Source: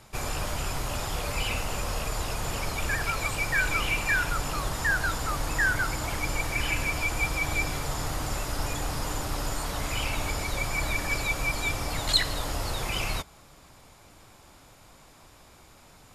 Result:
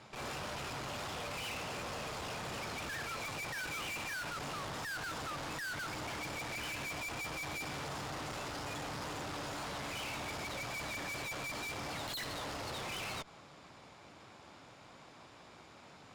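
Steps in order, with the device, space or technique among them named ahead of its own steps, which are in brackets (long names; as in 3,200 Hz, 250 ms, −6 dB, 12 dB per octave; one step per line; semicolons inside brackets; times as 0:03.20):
valve radio (band-pass filter 130–4,600 Hz; tube saturation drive 42 dB, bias 0.65; saturating transformer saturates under 120 Hz)
level +3 dB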